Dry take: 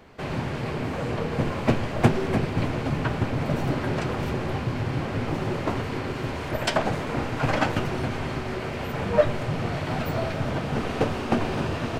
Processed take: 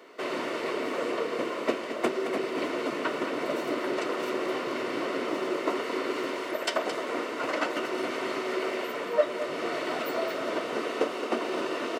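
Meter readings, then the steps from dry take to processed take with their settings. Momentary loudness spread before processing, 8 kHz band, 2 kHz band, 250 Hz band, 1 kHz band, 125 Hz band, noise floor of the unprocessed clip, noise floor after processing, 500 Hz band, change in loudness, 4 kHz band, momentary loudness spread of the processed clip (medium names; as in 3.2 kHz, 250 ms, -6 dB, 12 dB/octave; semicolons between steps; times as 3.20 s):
7 LU, -1.0 dB, -1.5 dB, -5.5 dB, -2.5 dB, -27.0 dB, -32 dBFS, -35 dBFS, -0.5 dB, -3.5 dB, -0.5 dB, 2 LU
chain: Chebyshev high-pass 330 Hz, order 3; gain riding within 3 dB 0.5 s; comb of notches 810 Hz; on a send: delay 219 ms -10 dB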